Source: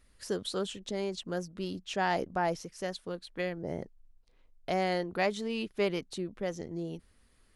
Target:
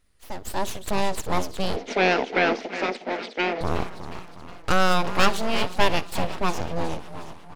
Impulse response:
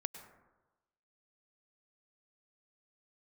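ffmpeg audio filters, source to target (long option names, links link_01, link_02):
-filter_complex "[0:a]dynaudnorm=framelen=160:gausssize=7:maxgain=13.5dB,asplit=2[link_01][link_02];[link_02]asplit=6[link_03][link_04][link_05][link_06][link_07][link_08];[link_03]adelay=362,afreqshift=51,volume=-11.5dB[link_09];[link_04]adelay=724,afreqshift=102,volume=-17.2dB[link_10];[link_05]adelay=1086,afreqshift=153,volume=-22.9dB[link_11];[link_06]adelay=1448,afreqshift=204,volume=-28.5dB[link_12];[link_07]adelay=1810,afreqshift=255,volume=-34.2dB[link_13];[link_08]adelay=2172,afreqshift=306,volume=-39.9dB[link_14];[link_09][link_10][link_11][link_12][link_13][link_14]amix=inputs=6:normalize=0[link_15];[link_01][link_15]amix=inputs=2:normalize=0,aeval=exprs='abs(val(0))':channel_layout=same,asettb=1/sr,asplit=3[link_16][link_17][link_18];[link_16]atrim=end=1.764[link_19];[link_17]atrim=start=1.76:end=3.61,asetpts=PTS-STARTPTS,afade=type=in:duration=0.004:curve=qsin,afade=type=out:start_time=1.846:duration=0.004:curve=qsin,highpass=frequency=240:width=0.5412,highpass=frequency=240:width=1.3066,equalizer=frequency=240:width_type=q:width=4:gain=10,equalizer=frequency=440:width_type=q:width=4:gain=9,equalizer=frequency=690:width_type=q:width=4:gain=5,equalizer=frequency=1100:width_type=q:width=4:gain=-8,equalizer=frequency=2100:width_type=q:width=4:gain=7,lowpass=frequency=5100:width=0.5412,lowpass=frequency=5100:width=1.3066[link_20];[link_18]atrim=start=3.606[link_21];[link_19][link_20]acrossfade=duration=0.004:curve1=hsin:curve2=qsin[link_22];[link_22][link_21]acrossfade=duration=0.004:curve1=qsin:curve2=hsin,aeval=exprs='0.794*(cos(1*acos(clip(val(0)/0.794,-1,1)))-cos(1*PI/2))+0.158*(cos(2*acos(clip(val(0)/0.794,-1,1)))-cos(2*PI/2))':channel_layout=same,asplit=2[link_23][link_24];[link_24]aecho=0:1:60|120|180:0.0794|0.0373|0.0175[link_25];[link_23][link_25]amix=inputs=2:normalize=0,volume=-1.5dB"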